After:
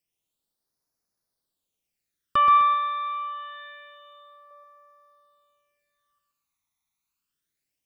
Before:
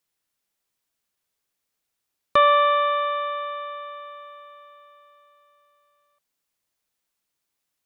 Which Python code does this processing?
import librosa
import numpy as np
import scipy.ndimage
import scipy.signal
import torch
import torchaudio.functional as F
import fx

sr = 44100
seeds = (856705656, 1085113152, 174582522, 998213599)

p1 = fx.low_shelf(x, sr, hz=370.0, db=-11.0, at=(2.57, 4.51))
p2 = fx.phaser_stages(p1, sr, stages=12, low_hz=500.0, high_hz=3000.0, hz=0.26, feedback_pct=30)
p3 = p2 + fx.echo_feedback(p2, sr, ms=128, feedback_pct=38, wet_db=-5.0, dry=0)
y = p3 * 10.0 ** (-2.0 / 20.0)